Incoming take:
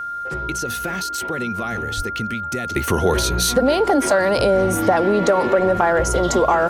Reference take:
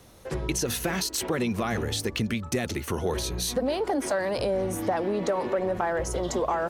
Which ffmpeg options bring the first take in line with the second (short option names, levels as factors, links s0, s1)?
-filter_complex "[0:a]bandreject=f=1400:w=30,asplit=3[s0][s1][s2];[s0]afade=t=out:st=1.96:d=0.02[s3];[s1]highpass=f=140:w=0.5412,highpass=f=140:w=1.3066,afade=t=in:st=1.96:d=0.02,afade=t=out:st=2.08:d=0.02[s4];[s2]afade=t=in:st=2.08:d=0.02[s5];[s3][s4][s5]amix=inputs=3:normalize=0,asetnsamples=n=441:p=0,asendcmd='2.76 volume volume -10dB',volume=1"